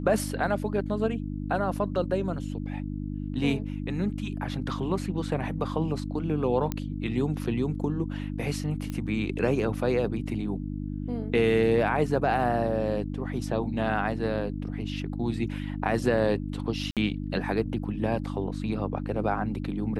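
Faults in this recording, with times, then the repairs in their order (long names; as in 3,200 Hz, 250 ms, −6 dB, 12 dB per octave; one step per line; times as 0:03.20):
mains hum 50 Hz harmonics 6 −33 dBFS
0:06.72: click −15 dBFS
0:08.90: click −21 dBFS
0:16.91–0:16.97: drop-out 57 ms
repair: click removal
hum removal 50 Hz, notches 6
repair the gap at 0:16.91, 57 ms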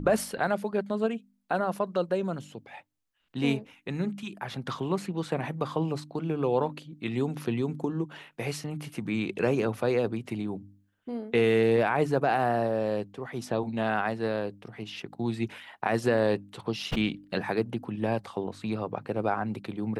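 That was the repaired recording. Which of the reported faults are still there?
none of them is left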